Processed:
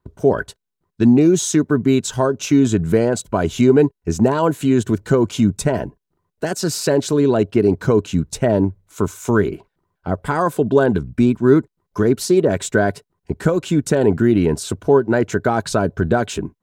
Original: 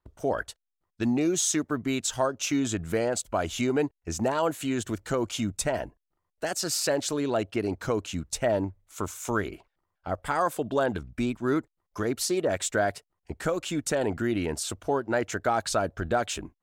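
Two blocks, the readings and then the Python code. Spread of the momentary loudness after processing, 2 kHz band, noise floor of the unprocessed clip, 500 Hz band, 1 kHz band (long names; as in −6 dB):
9 LU, +6.5 dB, −83 dBFS, +11.0 dB, +6.0 dB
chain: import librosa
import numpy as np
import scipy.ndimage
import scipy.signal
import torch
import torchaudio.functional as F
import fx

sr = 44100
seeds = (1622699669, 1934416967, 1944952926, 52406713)

y = fx.peak_eq(x, sr, hz=160.0, db=13.5, octaves=2.3)
y = fx.small_body(y, sr, hz=(410.0, 1000.0, 1500.0, 3900.0), ring_ms=45, db=8)
y = y * 10.0 ** (3.0 / 20.0)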